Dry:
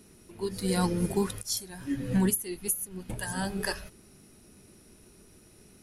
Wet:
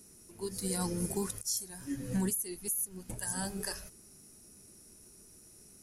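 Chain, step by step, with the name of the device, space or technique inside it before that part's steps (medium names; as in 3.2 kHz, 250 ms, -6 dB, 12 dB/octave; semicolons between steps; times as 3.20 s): over-bright horn tweeter (resonant high shelf 4.7 kHz +9 dB, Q 1.5; peak limiter -17 dBFS, peak gain reduction 11.5 dB); trim -6 dB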